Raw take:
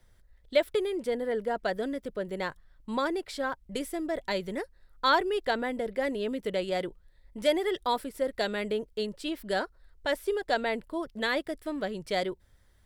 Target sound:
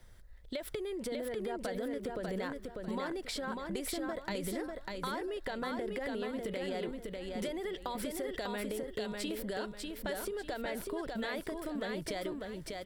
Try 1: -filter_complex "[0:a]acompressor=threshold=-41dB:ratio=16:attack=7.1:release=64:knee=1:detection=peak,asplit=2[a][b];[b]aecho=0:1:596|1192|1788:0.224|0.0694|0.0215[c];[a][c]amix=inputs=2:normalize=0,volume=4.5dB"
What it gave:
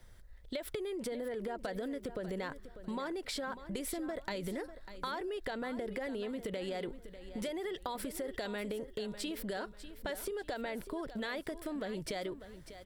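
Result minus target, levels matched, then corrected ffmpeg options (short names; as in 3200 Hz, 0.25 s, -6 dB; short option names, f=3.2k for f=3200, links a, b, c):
echo-to-direct -9.5 dB
-filter_complex "[0:a]acompressor=threshold=-41dB:ratio=16:attack=7.1:release=64:knee=1:detection=peak,asplit=2[a][b];[b]aecho=0:1:596|1192|1788|2384:0.668|0.207|0.0642|0.0199[c];[a][c]amix=inputs=2:normalize=0,volume=4.5dB"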